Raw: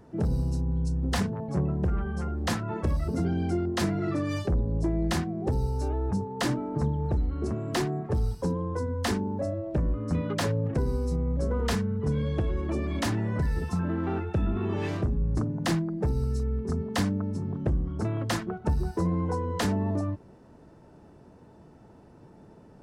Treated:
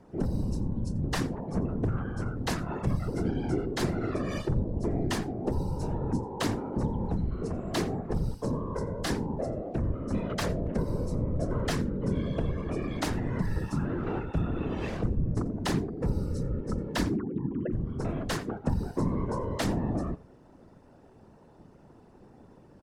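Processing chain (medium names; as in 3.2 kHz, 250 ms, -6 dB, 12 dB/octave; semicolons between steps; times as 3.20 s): 17.09–17.73 s: formants replaced by sine waves; delay 87 ms -20.5 dB; whisper effect; trim -2 dB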